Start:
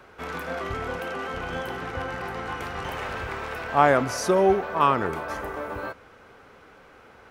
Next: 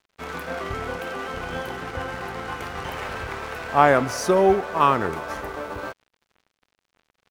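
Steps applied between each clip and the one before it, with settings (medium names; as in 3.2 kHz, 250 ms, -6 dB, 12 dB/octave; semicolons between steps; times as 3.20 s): crossover distortion -44 dBFS; trim +2.5 dB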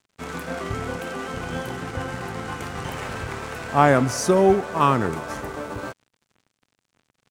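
ten-band graphic EQ 125 Hz +8 dB, 250 Hz +5 dB, 8 kHz +8 dB; trim -1.5 dB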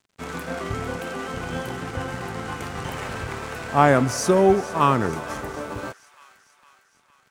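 feedback echo behind a high-pass 456 ms, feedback 58%, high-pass 1.7 kHz, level -16 dB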